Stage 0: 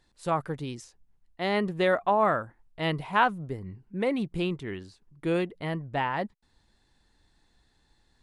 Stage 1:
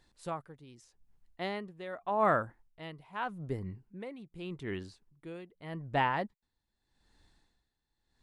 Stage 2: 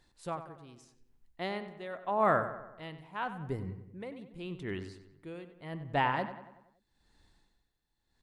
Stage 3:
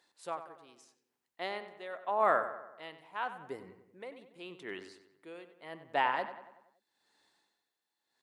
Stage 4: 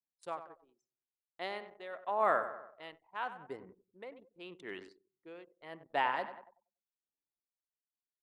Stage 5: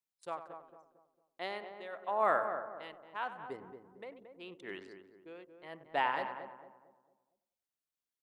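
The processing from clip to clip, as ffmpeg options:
-af "aeval=exprs='val(0)*pow(10,-19*(0.5-0.5*cos(2*PI*0.83*n/s))/20)':c=same"
-filter_complex "[0:a]asplit=2[a][b];[b]adelay=94,lowpass=f=3.4k:p=1,volume=-11dB,asplit=2[c][d];[d]adelay=94,lowpass=f=3.4k:p=1,volume=0.53,asplit=2[e][f];[f]adelay=94,lowpass=f=3.4k:p=1,volume=0.53,asplit=2[g][h];[h]adelay=94,lowpass=f=3.4k:p=1,volume=0.53,asplit=2[i][j];[j]adelay=94,lowpass=f=3.4k:p=1,volume=0.53,asplit=2[k][l];[l]adelay=94,lowpass=f=3.4k:p=1,volume=0.53[m];[a][c][e][g][i][k][m]amix=inputs=7:normalize=0"
-af "highpass=430"
-af "anlmdn=0.00251,volume=-2dB"
-filter_complex "[0:a]asplit=2[a][b];[b]adelay=226,lowpass=f=1.1k:p=1,volume=-7.5dB,asplit=2[c][d];[d]adelay=226,lowpass=f=1.1k:p=1,volume=0.41,asplit=2[e][f];[f]adelay=226,lowpass=f=1.1k:p=1,volume=0.41,asplit=2[g][h];[h]adelay=226,lowpass=f=1.1k:p=1,volume=0.41,asplit=2[i][j];[j]adelay=226,lowpass=f=1.1k:p=1,volume=0.41[k];[a][c][e][g][i][k]amix=inputs=6:normalize=0"

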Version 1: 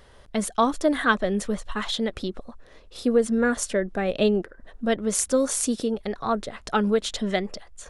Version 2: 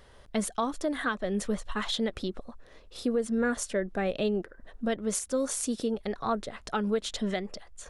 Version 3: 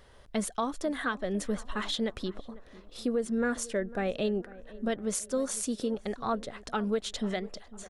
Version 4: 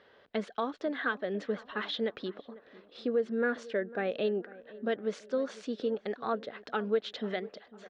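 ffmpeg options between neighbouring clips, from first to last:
-af "alimiter=limit=-16dB:level=0:latency=1:release=323,volume=-3dB"
-filter_complex "[0:a]asplit=2[a][b];[b]adelay=499,lowpass=f=1.5k:p=1,volume=-18.5dB,asplit=2[c][d];[d]adelay=499,lowpass=f=1.5k:p=1,volume=0.49,asplit=2[e][f];[f]adelay=499,lowpass=f=1.5k:p=1,volume=0.49,asplit=2[g][h];[h]adelay=499,lowpass=f=1.5k:p=1,volume=0.49[i];[a][c][e][g][i]amix=inputs=5:normalize=0,volume=-1.5dB"
-af "highpass=230,equalizer=f=450:t=q:w=4:g=4,equalizer=f=1k:t=q:w=4:g=-3,equalizer=f=1.6k:t=q:w=4:g=4,lowpass=f=4.1k:w=0.5412,lowpass=f=4.1k:w=1.3066,volume=-1.5dB"

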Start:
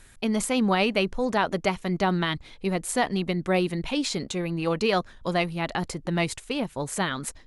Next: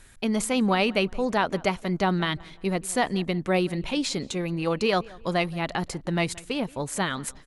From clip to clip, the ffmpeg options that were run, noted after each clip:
-filter_complex "[0:a]asplit=2[a][b];[b]adelay=175,lowpass=f=2.7k:p=1,volume=-22dB,asplit=2[c][d];[d]adelay=175,lowpass=f=2.7k:p=1,volume=0.37,asplit=2[e][f];[f]adelay=175,lowpass=f=2.7k:p=1,volume=0.37[g];[a][c][e][g]amix=inputs=4:normalize=0"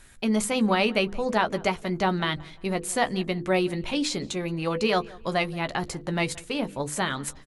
-filter_complex "[0:a]bandreject=f=50:t=h:w=6,bandreject=f=100:t=h:w=6,bandreject=f=150:t=h:w=6,bandreject=f=200:t=h:w=6,bandreject=f=250:t=h:w=6,bandreject=f=300:t=h:w=6,bandreject=f=350:t=h:w=6,bandreject=f=400:t=h:w=6,bandreject=f=450:t=h:w=6,bandreject=f=500:t=h:w=6,asplit=2[a][b];[b]adelay=14,volume=-10.5dB[c];[a][c]amix=inputs=2:normalize=0"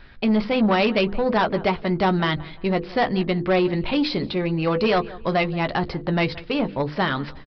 -af "highshelf=f=3.6k:g=-7,aresample=11025,asoftclip=type=tanh:threshold=-21dB,aresample=44100,volume=7.5dB"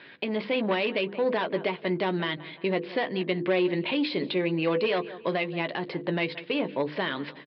-af "aemphasis=mode=production:type=50fm,alimiter=limit=-21dB:level=0:latency=1:release=448,highpass=f=190:w=0.5412,highpass=f=190:w=1.3066,equalizer=f=220:t=q:w=4:g=-9,equalizer=f=780:t=q:w=4:g=-7,equalizer=f=1.3k:t=q:w=4:g=-9,lowpass=f=3.4k:w=0.5412,lowpass=f=3.4k:w=1.3066,volume=4.5dB"

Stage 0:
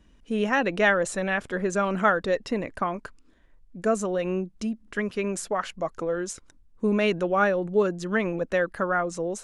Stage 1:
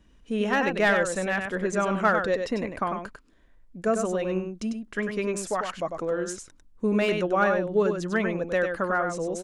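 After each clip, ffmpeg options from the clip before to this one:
-filter_complex "[0:a]aecho=1:1:98:0.501,acrossover=split=1500[a][b];[b]aeval=exprs='clip(val(0),-1,0.0562)':c=same[c];[a][c]amix=inputs=2:normalize=0,volume=-1dB"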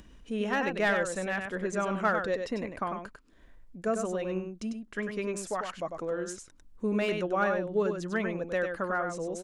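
-af "acompressor=mode=upward:threshold=-38dB:ratio=2.5,volume=-5dB"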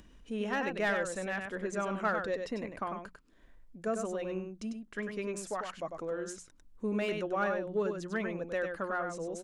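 -filter_complex "[0:a]bandreject=f=60:t=h:w=6,bandreject=f=120:t=h:w=6,bandreject=f=180:t=h:w=6,asplit=2[a][b];[b]asoftclip=type=tanh:threshold=-24dB,volume=-11dB[c];[a][c]amix=inputs=2:normalize=0,volume=-5.5dB"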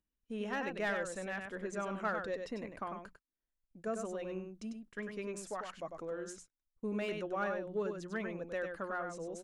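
-af "agate=range=-29dB:threshold=-50dB:ratio=16:detection=peak,volume=-4.5dB"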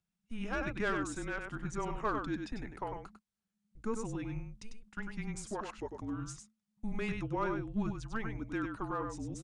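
-af "afreqshift=-220,aresample=22050,aresample=44100,volume=2dB"

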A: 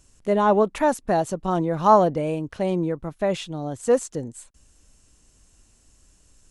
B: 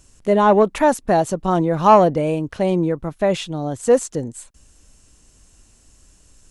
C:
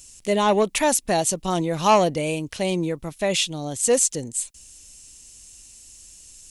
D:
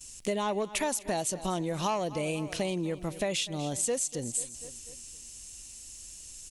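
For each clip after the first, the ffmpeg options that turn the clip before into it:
-af "acontrast=30"
-af "aexciter=amount=5.4:drive=2.5:freq=2.1k,volume=-5.5dB"
-af "aecho=1:1:245|490|735|980:0.1|0.052|0.027|0.0141,acompressor=threshold=-28dB:ratio=6,agate=range=-16dB:threshold=-52dB:ratio=16:detection=peak"

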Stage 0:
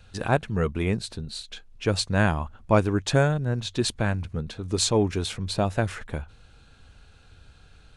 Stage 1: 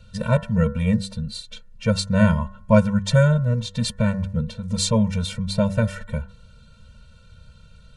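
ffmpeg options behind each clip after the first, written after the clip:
-af "equalizer=f=220:w=1.2:g=6.5,bandreject=f=97.52:t=h:w=4,bandreject=f=195.04:t=h:w=4,bandreject=f=292.56:t=h:w=4,bandreject=f=390.08:t=h:w=4,bandreject=f=487.6:t=h:w=4,bandreject=f=585.12:t=h:w=4,bandreject=f=682.64:t=h:w=4,bandreject=f=780.16:t=h:w=4,bandreject=f=877.68:t=h:w=4,bandreject=f=975.2:t=h:w=4,bandreject=f=1.07272k:t=h:w=4,bandreject=f=1.17024k:t=h:w=4,bandreject=f=1.26776k:t=h:w=4,bandreject=f=1.36528k:t=h:w=4,bandreject=f=1.4628k:t=h:w=4,bandreject=f=1.56032k:t=h:w=4,bandreject=f=1.65784k:t=h:w=4,bandreject=f=1.75536k:t=h:w=4,bandreject=f=1.85288k:t=h:w=4,afftfilt=real='re*eq(mod(floor(b*sr/1024/220),2),0)':imag='im*eq(mod(floor(b*sr/1024/220),2),0)':win_size=1024:overlap=0.75,volume=4dB"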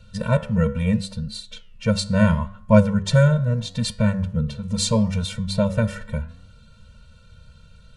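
-af "flanger=delay=9.3:depth=5.3:regen=88:speed=0.75:shape=sinusoidal,volume=4.5dB"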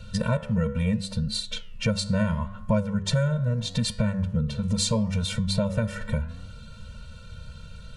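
-af "acompressor=threshold=-30dB:ratio=4,volume=6.5dB"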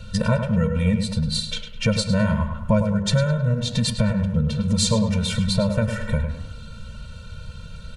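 -filter_complex "[0:a]asplit=2[a][b];[b]adelay=104,lowpass=f=3.5k:p=1,volume=-7.5dB,asplit=2[c][d];[d]adelay=104,lowpass=f=3.5k:p=1,volume=0.42,asplit=2[e][f];[f]adelay=104,lowpass=f=3.5k:p=1,volume=0.42,asplit=2[g][h];[h]adelay=104,lowpass=f=3.5k:p=1,volume=0.42,asplit=2[i][j];[j]adelay=104,lowpass=f=3.5k:p=1,volume=0.42[k];[a][c][e][g][i][k]amix=inputs=6:normalize=0,volume=4dB"

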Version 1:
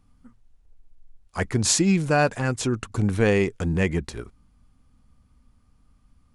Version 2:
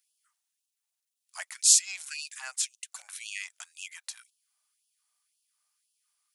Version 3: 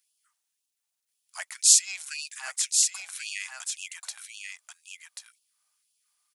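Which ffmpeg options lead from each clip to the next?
-af "aderivative,afftfilt=real='re*gte(b*sr/1024,520*pow(2600/520,0.5+0.5*sin(2*PI*1.9*pts/sr)))':imag='im*gte(b*sr/1024,520*pow(2600/520,0.5+0.5*sin(2*PI*1.9*pts/sr)))':win_size=1024:overlap=0.75,volume=3.5dB"
-af "aecho=1:1:1086:0.562,volume=2dB"

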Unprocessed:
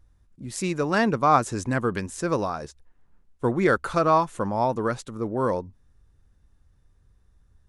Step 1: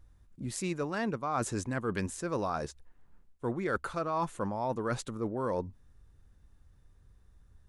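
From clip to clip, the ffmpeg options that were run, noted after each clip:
-af "equalizer=f=5.5k:w=4.2:g=-2,areverse,acompressor=threshold=-29dB:ratio=8,areverse"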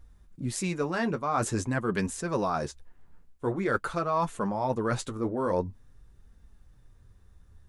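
-af "flanger=delay=4.3:depth=7.9:regen=-35:speed=0.47:shape=sinusoidal,volume=8dB"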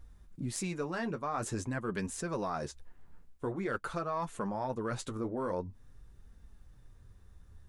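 -af "acompressor=threshold=-35dB:ratio=2.5,aeval=exprs='0.112*(cos(1*acos(clip(val(0)/0.112,-1,1)))-cos(1*PI/2))+0.0141*(cos(2*acos(clip(val(0)/0.112,-1,1)))-cos(2*PI/2))':c=same"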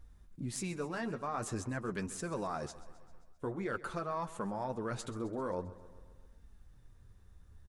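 -af "aecho=1:1:132|264|396|528|660|792:0.141|0.0848|0.0509|0.0305|0.0183|0.011,volume=-2.5dB"

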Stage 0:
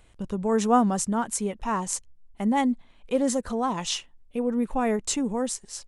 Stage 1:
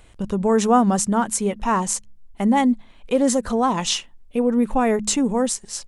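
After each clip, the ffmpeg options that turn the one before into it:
-filter_complex "[0:a]bandreject=f=70.17:t=h:w=4,bandreject=f=140.34:t=h:w=4,bandreject=f=210.51:t=h:w=4,asplit=2[a][b];[b]alimiter=limit=-18dB:level=0:latency=1:release=118,volume=2dB[c];[a][c]amix=inputs=2:normalize=0"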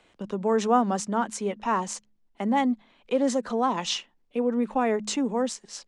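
-filter_complex "[0:a]acrossover=split=170 6700:gain=0.112 1 0.1[a][b][c];[a][b][c]amix=inputs=3:normalize=0,acrossover=split=170[d][e];[d]asoftclip=type=tanh:threshold=-37dB[f];[f][e]amix=inputs=2:normalize=0,volume=-4.5dB"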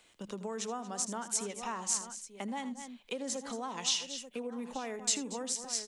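-af "aecho=1:1:80|231|886:0.178|0.168|0.133,acompressor=threshold=-28dB:ratio=6,crystalizer=i=5:c=0,volume=-8.5dB"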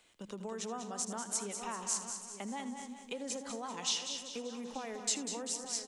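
-af "aecho=1:1:194|388|582|776|970|1164:0.376|0.184|0.0902|0.0442|0.0217|0.0106,volume=-3dB"

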